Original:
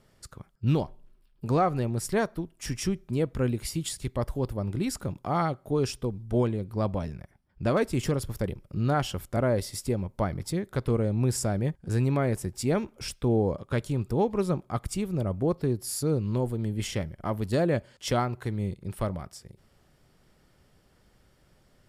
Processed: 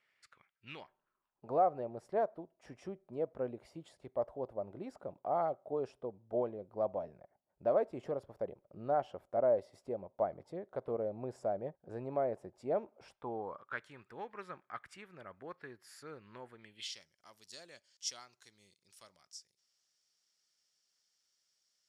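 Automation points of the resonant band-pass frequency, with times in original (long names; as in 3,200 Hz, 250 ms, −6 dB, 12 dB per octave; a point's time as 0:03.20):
resonant band-pass, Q 3.2
0:00.77 2,200 Hz
0:01.54 640 Hz
0:12.93 640 Hz
0:13.87 1,700 Hz
0:16.55 1,700 Hz
0:17.01 5,800 Hz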